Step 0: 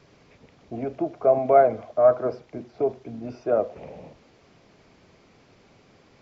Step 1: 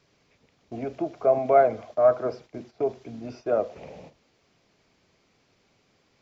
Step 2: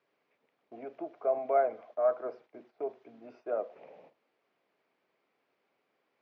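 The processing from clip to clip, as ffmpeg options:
ffmpeg -i in.wav -af "agate=range=-9dB:threshold=-43dB:ratio=16:detection=peak,highshelf=frequency=2200:gain=8,volume=-2.5dB" out.wav
ffmpeg -i in.wav -af "highpass=370,lowpass=2300,volume=-8dB" out.wav

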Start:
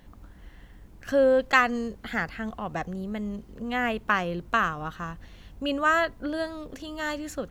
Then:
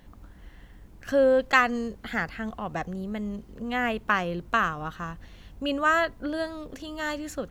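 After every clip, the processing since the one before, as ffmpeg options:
ffmpeg -i in.wav -af anull out.wav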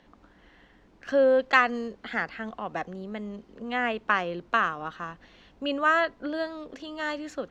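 ffmpeg -i in.wav -filter_complex "[0:a]acrossover=split=210 6100:gain=0.178 1 0.0708[link_01][link_02][link_03];[link_01][link_02][link_03]amix=inputs=3:normalize=0" out.wav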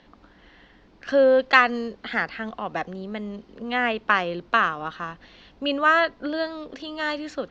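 ffmpeg -i in.wav -af "lowpass=frequency=4800:width_type=q:width=1.5,volume=3.5dB" out.wav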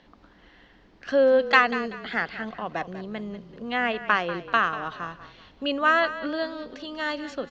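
ffmpeg -i in.wav -filter_complex "[0:a]asplit=4[link_01][link_02][link_03][link_04];[link_02]adelay=191,afreqshift=-32,volume=-13.5dB[link_05];[link_03]adelay=382,afreqshift=-64,volume=-22.9dB[link_06];[link_04]adelay=573,afreqshift=-96,volume=-32.2dB[link_07];[link_01][link_05][link_06][link_07]amix=inputs=4:normalize=0,volume=-2dB" out.wav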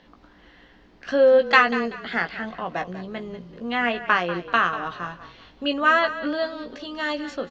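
ffmpeg -i in.wav -filter_complex "[0:a]asplit=2[link_01][link_02];[link_02]adelay=17,volume=-7dB[link_03];[link_01][link_03]amix=inputs=2:normalize=0,volume=1.5dB" out.wav

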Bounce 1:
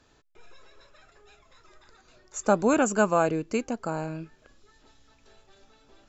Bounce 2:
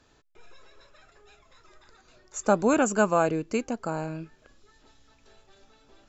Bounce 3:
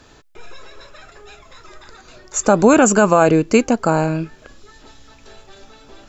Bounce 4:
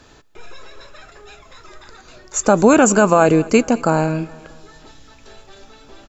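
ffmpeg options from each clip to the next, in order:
ffmpeg -i in.wav -af anull out.wav
ffmpeg -i in.wav -af "alimiter=level_in=15.5dB:limit=-1dB:release=50:level=0:latency=1,volume=-1dB" out.wav
ffmpeg -i in.wav -af "aecho=1:1:211|422|633|844:0.0841|0.0446|0.0236|0.0125" out.wav

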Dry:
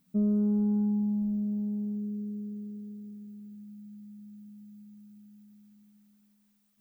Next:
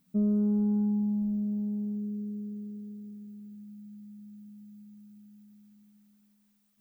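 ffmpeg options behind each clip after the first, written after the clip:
ffmpeg -i in.wav -af anull out.wav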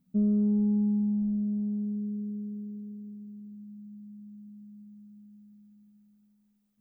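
ffmpeg -i in.wav -af "tiltshelf=frequency=640:gain=6.5,volume=-4dB" out.wav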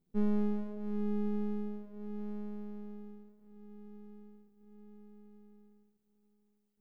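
ffmpeg -i in.wav -af "flanger=delay=19:depth=4.5:speed=0.38,aeval=exprs='max(val(0),0)':channel_layout=same" out.wav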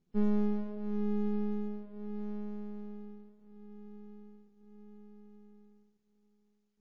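ffmpeg -i in.wav -af "volume=1.5dB" -ar 16000 -c:a wmav2 -b:a 32k out.wma

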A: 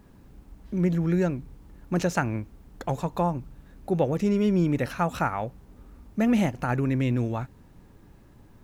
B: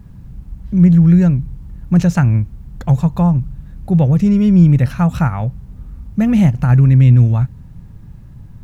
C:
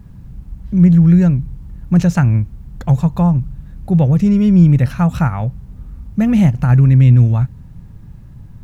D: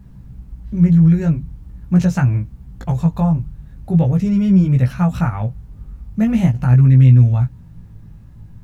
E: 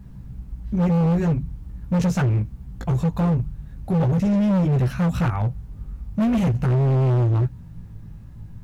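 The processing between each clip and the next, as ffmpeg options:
ffmpeg -i in.wav -af "lowshelf=frequency=220:width_type=q:width=1.5:gain=13,volume=3.5dB" out.wav
ffmpeg -i in.wav -af anull out.wav
ffmpeg -i in.wav -af "flanger=delay=15.5:depth=3.6:speed=0.43" out.wav
ffmpeg -i in.wav -af "volume=17dB,asoftclip=hard,volume=-17dB" out.wav

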